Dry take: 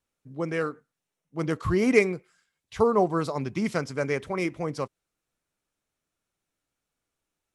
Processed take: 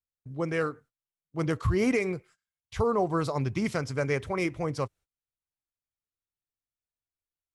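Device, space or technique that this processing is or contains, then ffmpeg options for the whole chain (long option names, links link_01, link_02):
car stereo with a boomy subwoofer: -af "lowshelf=frequency=140:width_type=q:width=1.5:gain=7.5,alimiter=limit=-17dB:level=0:latency=1:release=107,agate=range=-20dB:threshold=-53dB:ratio=16:detection=peak"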